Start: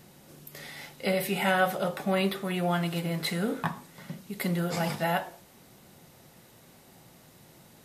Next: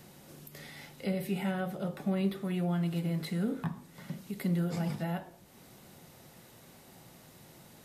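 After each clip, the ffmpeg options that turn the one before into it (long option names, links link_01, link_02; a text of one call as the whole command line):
ffmpeg -i in.wav -filter_complex "[0:a]acrossover=split=350[link_01][link_02];[link_02]acompressor=threshold=-51dB:ratio=2[link_03];[link_01][link_03]amix=inputs=2:normalize=0" out.wav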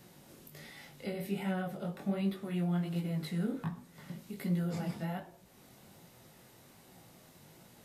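ffmpeg -i in.wav -af "flanger=delay=16:depth=7.7:speed=1.3" out.wav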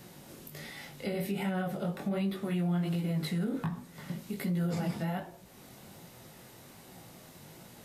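ffmpeg -i in.wav -af "alimiter=level_in=6.5dB:limit=-24dB:level=0:latency=1:release=73,volume=-6.5dB,volume=6dB" out.wav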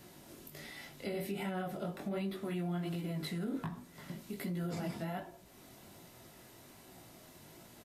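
ffmpeg -i in.wav -af "aecho=1:1:3:0.33,volume=-4dB" out.wav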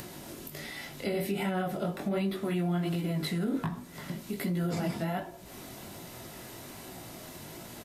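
ffmpeg -i in.wav -af "acompressor=mode=upward:threshold=-45dB:ratio=2.5,volume=7dB" out.wav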